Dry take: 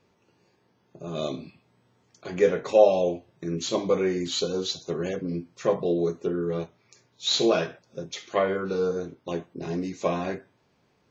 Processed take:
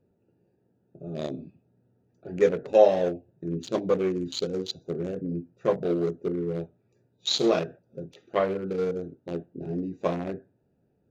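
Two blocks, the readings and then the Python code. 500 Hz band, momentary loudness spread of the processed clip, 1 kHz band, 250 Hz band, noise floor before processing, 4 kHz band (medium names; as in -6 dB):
-1.0 dB, 16 LU, -1.5 dB, -0.5 dB, -68 dBFS, -3.5 dB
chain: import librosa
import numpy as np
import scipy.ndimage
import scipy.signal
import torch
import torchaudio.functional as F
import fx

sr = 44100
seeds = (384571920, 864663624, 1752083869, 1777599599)

y = fx.wiener(x, sr, points=41)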